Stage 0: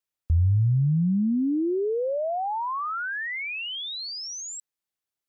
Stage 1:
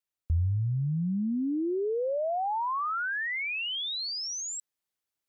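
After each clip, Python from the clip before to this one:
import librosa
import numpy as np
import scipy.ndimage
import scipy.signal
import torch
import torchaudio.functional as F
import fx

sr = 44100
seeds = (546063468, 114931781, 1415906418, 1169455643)

y = fx.rider(x, sr, range_db=4, speed_s=0.5)
y = y * librosa.db_to_amplitude(-3.5)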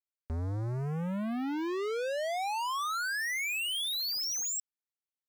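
y = fx.low_shelf(x, sr, hz=240.0, db=-5.0)
y = fx.leveller(y, sr, passes=5)
y = y * librosa.db_to_amplitude(-6.5)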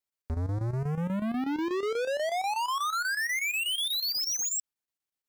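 y = fx.chopper(x, sr, hz=8.2, depth_pct=65, duty_pct=80)
y = y * librosa.db_to_amplitude(4.0)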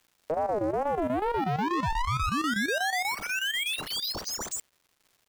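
y = scipy.signal.medfilt(x, 25)
y = fx.dmg_crackle(y, sr, seeds[0], per_s=580.0, level_db=-56.0)
y = fx.ring_lfo(y, sr, carrier_hz=570.0, swing_pct=25, hz=2.3)
y = y * librosa.db_to_amplitude(5.0)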